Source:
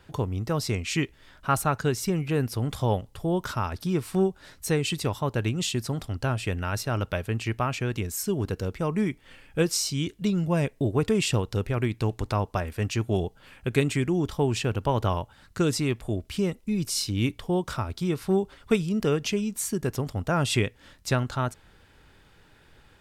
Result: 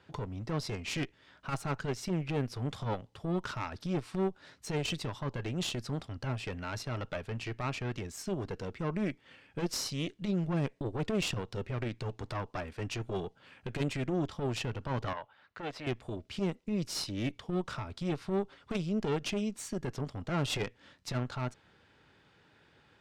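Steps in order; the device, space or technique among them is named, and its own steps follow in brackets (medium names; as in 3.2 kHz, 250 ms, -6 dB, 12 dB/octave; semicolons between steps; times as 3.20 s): valve radio (band-pass 110–5500 Hz; valve stage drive 24 dB, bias 0.8; transformer saturation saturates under 150 Hz); 15.13–15.87 s: three-band isolator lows -14 dB, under 460 Hz, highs -18 dB, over 3.7 kHz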